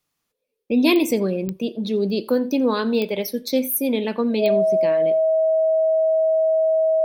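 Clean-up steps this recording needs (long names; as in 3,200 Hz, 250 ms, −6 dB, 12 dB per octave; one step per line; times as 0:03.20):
click removal
notch filter 640 Hz, Q 30
echo removal 86 ms −23 dB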